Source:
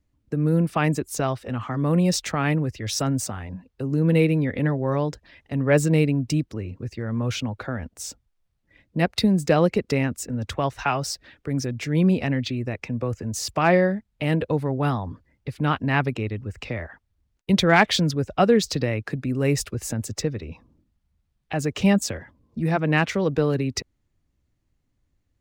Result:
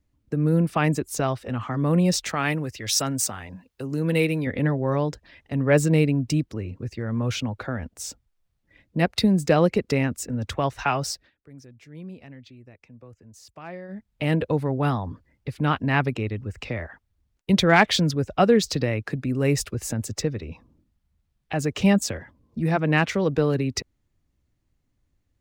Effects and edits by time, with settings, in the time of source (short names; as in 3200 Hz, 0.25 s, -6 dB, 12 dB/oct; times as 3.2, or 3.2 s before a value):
2.29–4.47 tilt +2 dB/oct
11.1–14.09 dip -20 dB, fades 0.21 s